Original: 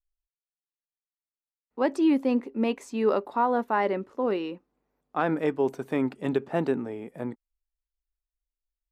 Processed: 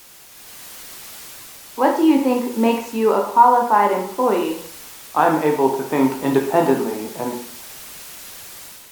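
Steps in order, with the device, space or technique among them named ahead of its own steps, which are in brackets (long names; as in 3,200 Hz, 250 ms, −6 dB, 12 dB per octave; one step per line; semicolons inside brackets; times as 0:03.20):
filmed off a television (band-pass filter 150–7,200 Hz; parametric band 930 Hz +11 dB 0.44 octaves; convolution reverb RT60 0.55 s, pre-delay 14 ms, DRR 1 dB; white noise bed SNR 20 dB; automatic gain control gain up to 8 dB; AAC 96 kbit/s 48,000 Hz)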